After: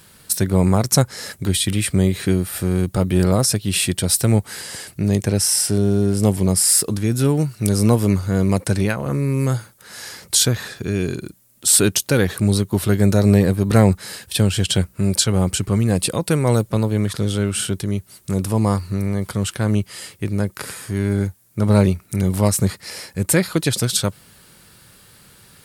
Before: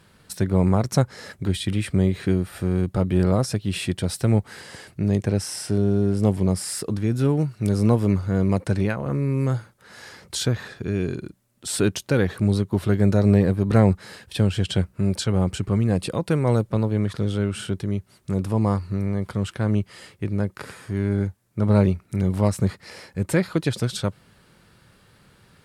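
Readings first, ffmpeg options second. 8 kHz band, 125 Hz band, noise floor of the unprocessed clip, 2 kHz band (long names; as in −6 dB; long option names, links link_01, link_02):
+15.0 dB, +3.0 dB, −58 dBFS, +5.5 dB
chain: -af "aemphasis=mode=production:type=75kf,volume=3dB"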